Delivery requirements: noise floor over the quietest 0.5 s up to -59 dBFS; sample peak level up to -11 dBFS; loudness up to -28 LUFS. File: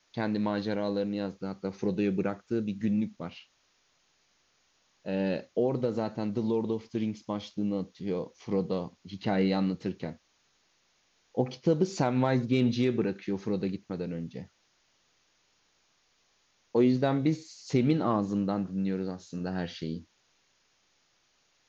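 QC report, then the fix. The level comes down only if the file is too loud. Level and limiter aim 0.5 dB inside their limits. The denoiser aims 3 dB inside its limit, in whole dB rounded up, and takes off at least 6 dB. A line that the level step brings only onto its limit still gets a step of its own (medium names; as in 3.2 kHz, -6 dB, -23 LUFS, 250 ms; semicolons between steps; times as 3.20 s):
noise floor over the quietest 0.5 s -70 dBFS: pass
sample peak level -13.5 dBFS: pass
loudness -30.5 LUFS: pass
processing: none needed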